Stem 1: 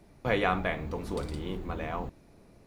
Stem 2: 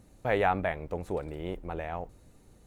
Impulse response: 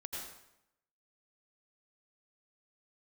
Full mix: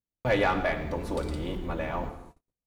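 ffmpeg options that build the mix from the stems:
-filter_complex "[0:a]bandreject=frequency=54.55:width_type=h:width=4,bandreject=frequency=109.1:width_type=h:width=4,bandreject=frequency=163.65:width_type=h:width=4,bandreject=frequency=218.2:width_type=h:width=4,bandreject=frequency=272.75:width_type=h:width=4,bandreject=frequency=327.3:width_type=h:width=4,bandreject=frequency=381.85:width_type=h:width=4,bandreject=frequency=436.4:width_type=h:width=4,bandreject=frequency=490.95:width_type=h:width=4,asoftclip=type=tanh:threshold=-21dB,volume=-0.5dB,asplit=2[link_01][link_02];[link_02]volume=-5dB[link_03];[1:a]volume=-1dB,asplit=3[link_04][link_05][link_06];[link_05]volume=-21.5dB[link_07];[link_06]apad=whole_len=117457[link_08];[link_01][link_08]sidechaingate=range=-33dB:threshold=-49dB:ratio=16:detection=peak[link_09];[2:a]atrim=start_sample=2205[link_10];[link_03][link_07]amix=inputs=2:normalize=0[link_11];[link_11][link_10]afir=irnorm=-1:irlink=0[link_12];[link_09][link_04][link_12]amix=inputs=3:normalize=0,agate=range=-40dB:threshold=-48dB:ratio=16:detection=peak"

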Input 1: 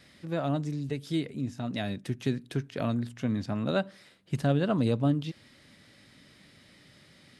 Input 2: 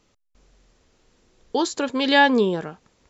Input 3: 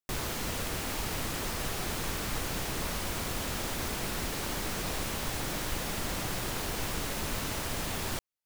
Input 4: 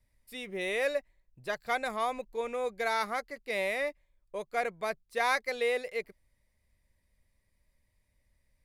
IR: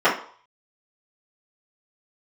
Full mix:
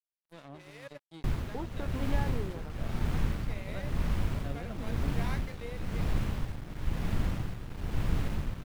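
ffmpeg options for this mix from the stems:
-filter_complex "[0:a]highpass=frequency=53:width=0.5412,highpass=frequency=53:width=1.3066,volume=-15.5dB[link_01];[1:a]lowpass=1500,acompressor=threshold=-23dB:ratio=6,volume=-12dB,asplit=2[link_02][link_03];[2:a]bass=frequency=250:gain=15,treble=frequency=4000:gain=-12,tremolo=f=1:d=0.67,adelay=1150,volume=-4dB[link_04];[3:a]highpass=frequency=300:width=0.5412,highpass=frequency=300:width=1.3066,flanger=delay=10:depth=3.4:regen=67:speed=1:shape=sinusoidal,volume=-10dB[link_05];[link_03]apad=whole_len=381287[link_06];[link_05][link_06]sidechaincompress=threshold=-56dB:ratio=8:attack=16:release=541[link_07];[link_01][link_02][link_04][link_07]amix=inputs=4:normalize=0,aeval=exprs='sgn(val(0))*max(abs(val(0))-0.00473,0)':channel_layout=same"

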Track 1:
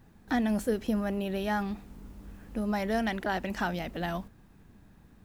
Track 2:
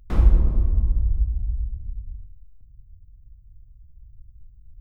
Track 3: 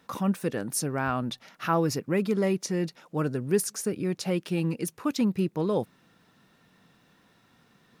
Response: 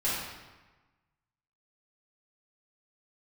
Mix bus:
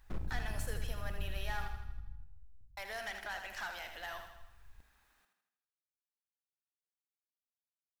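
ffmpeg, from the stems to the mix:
-filter_complex "[0:a]highpass=1100,asoftclip=type=tanh:threshold=-33dB,volume=-3dB,asplit=3[link_01][link_02][link_03];[link_01]atrim=end=1.68,asetpts=PTS-STARTPTS,afade=type=out:start_time=1.676:duration=0.004:curve=hsin[link_04];[link_02]atrim=start=1.68:end=2.77,asetpts=PTS-STARTPTS,volume=0[link_05];[link_03]atrim=start=2.77,asetpts=PTS-STARTPTS,afade=type=in:duration=0.004:curve=hsin[link_06];[link_04][link_05][link_06]concat=n=3:v=0:a=1,asplit=3[link_07][link_08][link_09];[link_08]volume=-23.5dB[link_10];[link_09]volume=-7dB[link_11];[1:a]alimiter=limit=-15.5dB:level=0:latency=1,aeval=exprs='(tanh(17.8*val(0)+0.6)-tanh(0.6))/17.8':channel_layout=same,volume=-11dB,asplit=2[link_12][link_13];[link_13]volume=-20.5dB[link_14];[3:a]atrim=start_sample=2205[link_15];[link_10][link_14]amix=inputs=2:normalize=0[link_16];[link_16][link_15]afir=irnorm=-1:irlink=0[link_17];[link_11]aecho=0:1:80|160|240|320|400|480|560|640:1|0.54|0.292|0.157|0.085|0.0459|0.0248|0.0134[link_18];[link_07][link_12][link_17][link_18]amix=inputs=4:normalize=0"

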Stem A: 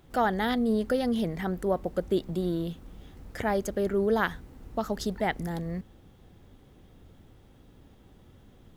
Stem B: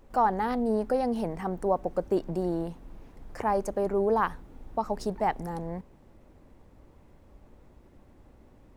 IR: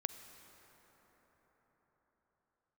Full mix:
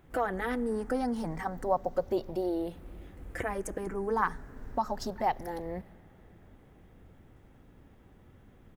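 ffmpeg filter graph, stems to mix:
-filter_complex "[0:a]highshelf=frequency=2800:width_type=q:width=1.5:gain=-8.5,volume=-3.5dB,asplit=2[link_01][link_02];[link_02]volume=-14.5dB[link_03];[1:a]agate=range=-33dB:threshold=-43dB:ratio=3:detection=peak,asplit=2[link_04][link_05];[link_05]afreqshift=-0.32[link_06];[link_04][link_06]amix=inputs=2:normalize=1,volume=-1,adelay=5.2,volume=-1dB,asplit=2[link_07][link_08];[link_08]apad=whole_len=386479[link_09];[link_01][link_09]sidechaincompress=threshold=-41dB:ratio=8:attack=42:release=194[link_10];[2:a]atrim=start_sample=2205[link_11];[link_03][link_11]afir=irnorm=-1:irlink=0[link_12];[link_10][link_07][link_12]amix=inputs=3:normalize=0,highshelf=frequency=3900:gain=5.5"

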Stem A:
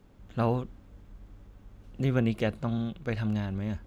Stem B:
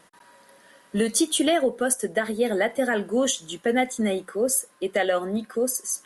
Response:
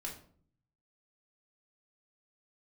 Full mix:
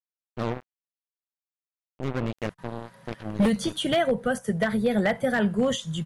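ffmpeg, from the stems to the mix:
-filter_complex "[0:a]bandreject=frequency=49.06:width_type=h:width=4,bandreject=frequency=98.12:width_type=h:width=4,bandreject=frequency=147.18:width_type=h:width=4,bandreject=frequency=196.24:width_type=h:width=4,bandreject=frequency=245.3:width_type=h:width=4,bandreject=frequency=294.36:width_type=h:width=4,bandreject=frequency=343.42:width_type=h:width=4,bandreject=frequency=392.48:width_type=h:width=4,bandreject=frequency=441.54:width_type=h:width=4,bandreject=frequency=490.6:width_type=h:width=4,bandreject=frequency=539.66:width_type=h:width=4,bandreject=frequency=588.72:width_type=h:width=4,bandreject=frequency=637.78:width_type=h:width=4,bandreject=frequency=686.84:width_type=h:width=4,acompressor=mode=upward:threshold=-29dB:ratio=2.5,acrusher=bits=3:mix=0:aa=0.5,volume=-2.5dB[link_01];[1:a]acrossover=split=4700[link_02][link_03];[link_03]acompressor=threshold=-33dB:ratio=4:attack=1:release=60[link_04];[link_02][link_04]amix=inputs=2:normalize=0,lowshelf=frequency=210:width_type=q:width=3:gain=12,aeval=exprs='0.168*(abs(mod(val(0)/0.168+3,4)-2)-1)':channel_layout=same,adelay=2450,volume=1dB[link_05];[link_01][link_05]amix=inputs=2:normalize=0,highshelf=frequency=4600:gain=-8.5"

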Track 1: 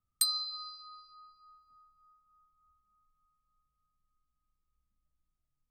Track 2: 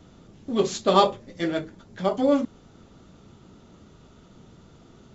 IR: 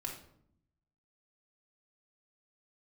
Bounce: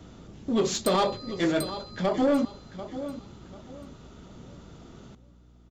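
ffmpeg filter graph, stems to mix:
-filter_complex "[0:a]adelay=650,volume=-3dB,asplit=2[link_01][link_02];[link_02]volume=-6.5dB[link_03];[1:a]alimiter=limit=-14dB:level=0:latency=1:release=90,volume=3dB,asplit=3[link_04][link_05][link_06];[link_05]volume=-15dB[link_07];[link_06]apad=whole_len=280119[link_08];[link_01][link_08]sidechaincompress=threshold=-21dB:ratio=8:attack=16:release=390[link_09];[link_03][link_07]amix=inputs=2:normalize=0,aecho=0:1:741|1482|2223|2964:1|0.28|0.0784|0.022[link_10];[link_09][link_04][link_10]amix=inputs=3:normalize=0,asoftclip=type=tanh:threshold=-16.5dB,aeval=exprs='val(0)+0.002*(sin(2*PI*60*n/s)+sin(2*PI*2*60*n/s)/2+sin(2*PI*3*60*n/s)/3+sin(2*PI*4*60*n/s)/4+sin(2*PI*5*60*n/s)/5)':channel_layout=same"

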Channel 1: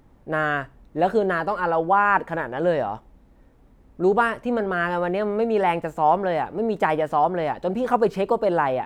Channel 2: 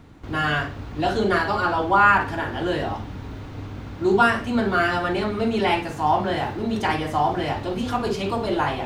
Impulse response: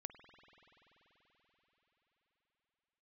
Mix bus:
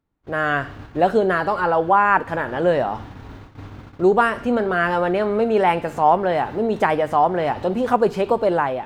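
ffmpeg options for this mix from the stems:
-filter_complex "[0:a]volume=-2.5dB,asplit=2[link_01][link_02];[1:a]equalizer=frequency=1300:width=0.96:gain=3,acompressor=threshold=-23dB:ratio=2,volume=-11dB,asplit=2[link_03][link_04];[link_04]volume=-4dB[link_05];[link_02]apad=whole_len=390469[link_06];[link_03][link_06]sidechaincompress=threshold=-33dB:ratio=8:attack=16:release=125[link_07];[2:a]atrim=start_sample=2205[link_08];[link_05][link_08]afir=irnorm=-1:irlink=0[link_09];[link_01][link_07][link_09]amix=inputs=3:normalize=0,agate=range=-24dB:threshold=-42dB:ratio=16:detection=peak,dynaudnorm=framelen=110:gausssize=7:maxgain=6dB"

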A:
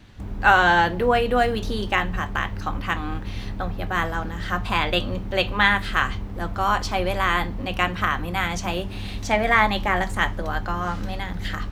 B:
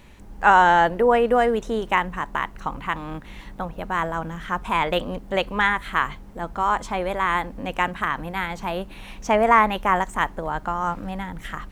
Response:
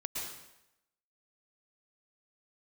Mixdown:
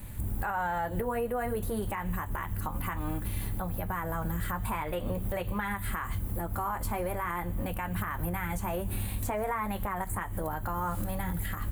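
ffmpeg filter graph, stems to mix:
-filter_complex "[0:a]bass=frequency=250:gain=14,treble=frequency=4000:gain=5,aexciter=amount=9.9:drive=9.6:freq=8400,acrossover=split=170|360|2600[link_01][link_02][link_03][link_04];[link_01]acompressor=threshold=-22dB:ratio=4[link_05];[link_02]acompressor=threshold=-33dB:ratio=4[link_06];[link_03]acompressor=threshold=-32dB:ratio=4[link_07];[link_04]acompressor=threshold=-32dB:ratio=4[link_08];[link_05][link_06][link_07][link_08]amix=inputs=4:normalize=0,volume=-7dB,asplit=2[link_09][link_10];[link_10]volume=-18.5dB[link_11];[1:a]acompressor=threshold=-25dB:ratio=2,lowpass=frequency=2400:width=0.5412,lowpass=frequency=2400:width=1.3066,flanger=delay=9.9:depth=3.6:regen=-30:speed=0.51:shape=sinusoidal,volume=-1,volume=1.5dB,asplit=2[link_12][link_13];[link_13]apad=whole_len=516579[link_14];[link_09][link_14]sidechaincompress=threshold=-32dB:ratio=8:attack=16:release=168[link_15];[2:a]atrim=start_sample=2205[link_16];[link_11][link_16]afir=irnorm=-1:irlink=0[link_17];[link_15][link_12][link_17]amix=inputs=3:normalize=0,alimiter=limit=-23dB:level=0:latency=1:release=137"

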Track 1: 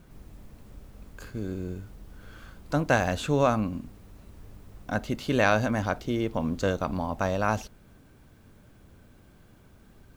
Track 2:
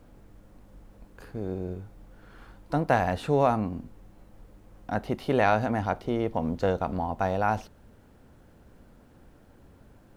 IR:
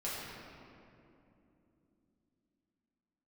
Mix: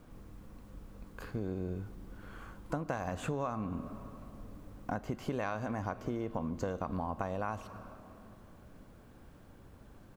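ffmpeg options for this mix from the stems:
-filter_complex "[0:a]equalizer=frequency=1100:width=5.5:gain=10.5,volume=-8.5dB,asplit=2[link_01][link_02];[link_02]volume=-16dB[link_03];[1:a]acompressor=threshold=-27dB:ratio=6,adelay=0.5,volume=-2.5dB[link_04];[2:a]atrim=start_sample=2205[link_05];[link_03][link_05]afir=irnorm=-1:irlink=0[link_06];[link_01][link_04][link_06]amix=inputs=3:normalize=0,acompressor=threshold=-32dB:ratio=6"

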